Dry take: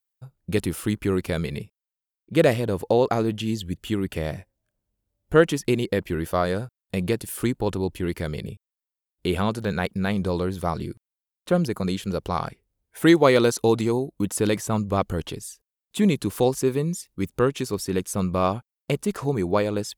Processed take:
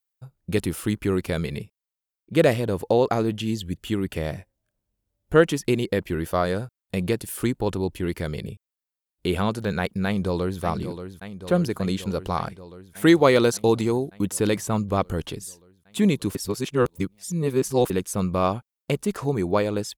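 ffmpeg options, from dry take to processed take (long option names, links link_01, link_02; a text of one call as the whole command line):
ffmpeg -i in.wav -filter_complex "[0:a]asplit=2[link_01][link_02];[link_02]afade=type=in:start_time=10.05:duration=0.01,afade=type=out:start_time=10.61:duration=0.01,aecho=0:1:580|1160|1740|2320|2900|3480|4060|4640|5220|5800|6380|6960:0.316228|0.237171|0.177878|0.133409|0.100056|0.0750423|0.0562817|0.0422113|0.0316585|0.0237439|0.0178079|0.0133559[link_03];[link_01][link_03]amix=inputs=2:normalize=0,asplit=3[link_04][link_05][link_06];[link_04]atrim=end=16.352[link_07];[link_05]atrim=start=16.348:end=17.902,asetpts=PTS-STARTPTS,areverse[link_08];[link_06]atrim=start=17.898[link_09];[link_07][link_08]acrossfade=duration=0.004:curve1=hsin:curve2=hsin[link_10];[link_10][link_09]acrossfade=duration=0.004:curve1=hsin:curve2=hsin" out.wav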